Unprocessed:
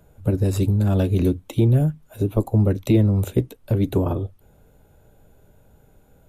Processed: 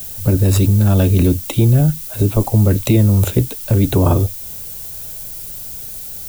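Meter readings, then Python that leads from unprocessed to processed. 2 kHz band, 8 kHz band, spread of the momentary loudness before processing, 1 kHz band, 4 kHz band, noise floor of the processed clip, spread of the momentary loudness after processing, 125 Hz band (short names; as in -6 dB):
+8.5 dB, n/a, 8 LU, +8.5 dB, +11.0 dB, -30 dBFS, 14 LU, +7.0 dB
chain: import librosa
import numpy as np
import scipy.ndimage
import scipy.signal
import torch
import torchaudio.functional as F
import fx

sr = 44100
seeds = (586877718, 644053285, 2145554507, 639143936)

p1 = fx.peak_eq(x, sr, hz=370.0, db=-4.5, octaves=1.8)
p2 = fx.over_compress(p1, sr, threshold_db=-24.0, ratio=-1.0)
p3 = p1 + F.gain(torch.from_numpy(p2), 0.0).numpy()
p4 = fx.dmg_noise_colour(p3, sr, seeds[0], colour='violet', level_db=-34.0)
y = F.gain(torch.from_numpy(p4), 4.0).numpy()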